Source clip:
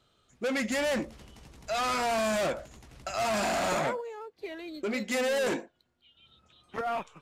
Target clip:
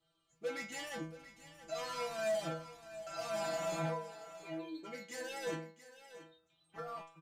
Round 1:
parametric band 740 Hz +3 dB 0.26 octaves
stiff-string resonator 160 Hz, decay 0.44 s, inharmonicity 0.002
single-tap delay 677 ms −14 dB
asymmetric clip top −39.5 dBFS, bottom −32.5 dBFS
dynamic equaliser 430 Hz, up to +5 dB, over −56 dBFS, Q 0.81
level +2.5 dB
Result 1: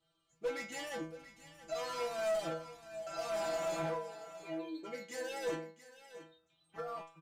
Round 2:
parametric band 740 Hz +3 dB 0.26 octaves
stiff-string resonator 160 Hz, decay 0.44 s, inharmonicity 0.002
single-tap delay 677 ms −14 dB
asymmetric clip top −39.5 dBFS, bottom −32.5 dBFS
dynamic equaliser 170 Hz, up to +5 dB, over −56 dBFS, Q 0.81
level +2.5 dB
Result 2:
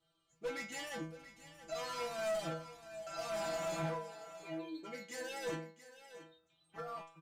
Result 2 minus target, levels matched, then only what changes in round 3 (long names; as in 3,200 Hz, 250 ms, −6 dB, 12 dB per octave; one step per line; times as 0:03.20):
asymmetric clip: distortion +7 dB
change: asymmetric clip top −33 dBFS, bottom −32.5 dBFS